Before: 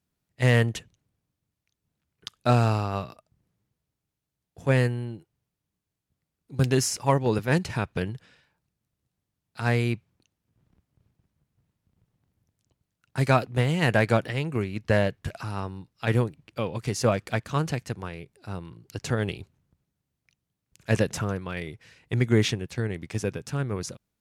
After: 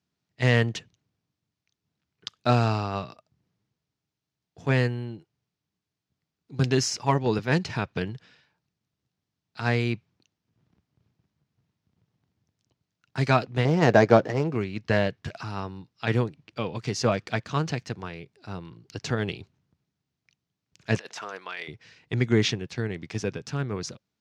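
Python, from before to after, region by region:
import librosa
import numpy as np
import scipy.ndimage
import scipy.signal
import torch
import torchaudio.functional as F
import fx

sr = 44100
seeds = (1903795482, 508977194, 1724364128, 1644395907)

y = fx.chain(x, sr, fx.median_filter(points=15),
    fx.peak_eq(hz=520.0, db=8.5, octaves=2.4), at=(13.65, 14.55))
y = fx.chain(y, sr, fx.highpass(hz=700.0, slope=12),
    fx.over_compress(threshold_db=-38.0, ratio=-1.0), at=(20.98, 21.68))
y = scipy.signal.sosfilt(scipy.signal.butter(2, 99.0, 'highpass', fs=sr, output='sos'), y)
y = fx.high_shelf_res(y, sr, hz=7700.0, db=-13.0, q=1.5)
y = fx.notch(y, sr, hz=540.0, q=12.0)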